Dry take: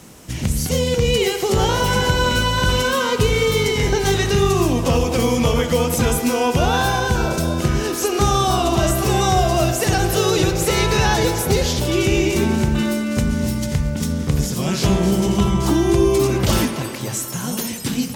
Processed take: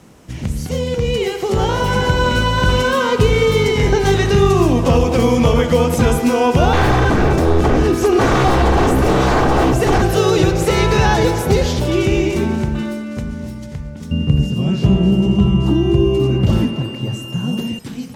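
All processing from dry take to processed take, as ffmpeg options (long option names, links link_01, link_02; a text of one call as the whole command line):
ffmpeg -i in.wav -filter_complex "[0:a]asettb=1/sr,asplit=3[link_01][link_02][link_03];[link_01]atrim=end=6.734[link_04];[link_02]atrim=start=6.73:end=10.02,asetpts=PTS-STARTPTS,afade=type=in:duration=0.004:curve=qsin,afade=type=out:start_time=3.286:duration=0.004:curve=qsin,bass=frequency=250:gain=12,treble=frequency=4000:gain=-3,aeval=exprs='0.237*(abs(mod(val(0)/0.237+3,4)-2)-1)':channel_layout=same,aecho=1:1:2.6:0.31,atrim=end_sample=145089[link_05];[link_03]atrim=start=10.016[link_06];[link_04][link_05]acrossfade=duration=0.004:curve1=hsin:curve2=qsin[link_07];[link_07][link_06]acrossfade=duration=0.004:curve1=qsin:curve2=hsin,asettb=1/sr,asplit=3[link_08][link_09][link_10];[link_08]atrim=end=14.114[link_11];[link_09]atrim=start=14.11:end=17.79,asetpts=PTS-STARTPTS,afade=type=in:duration=0.004:curve=qsin,afade=type=out:start_time=3.676:duration=0.004:curve=qsin,equalizer=frequency=130:width=0.31:gain=14.5,aeval=exprs='val(0)+0.1*sin(2*PI*2800*n/s)':channel_layout=same[link_12];[link_10]atrim=start=17.786[link_13];[link_11][link_12]acrossfade=duration=0.004:curve1=hsin:curve2=qsin[link_14];[link_14][link_13]acrossfade=duration=0.004:curve1=qsin:curve2=hsin,highshelf=frequency=3100:gain=-8.5,dynaudnorm=framelen=340:gausssize=11:maxgain=11.5dB,highshelf=frequency=12000:gain=-5,volume=-1dB" out.wav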